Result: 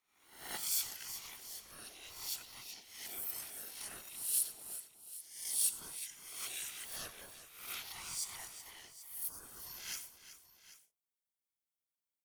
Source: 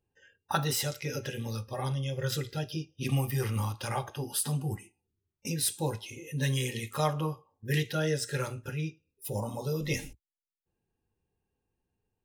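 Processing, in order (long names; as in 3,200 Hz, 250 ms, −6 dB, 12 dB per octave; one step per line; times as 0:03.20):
peak hold with a rise ahead of every peak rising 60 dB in 0.65 s
first-order pre-emphasis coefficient 0.97
mains-hum notches 50/100/150/200/250/300/350/400/450 Hz
in parallel at −9 dB: wave folding −23 dBFS
on the sum: random phases in short frames
ring modulation 550 Hz
on a send: multi-tap delay 89/374/784 ms −18/−13/−16 dB
on the sum: level −4.5 dB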